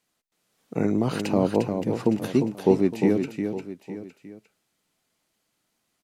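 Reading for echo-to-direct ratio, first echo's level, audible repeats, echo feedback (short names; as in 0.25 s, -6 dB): -6.0 dB, -6.5 dB, 3, no steady repeat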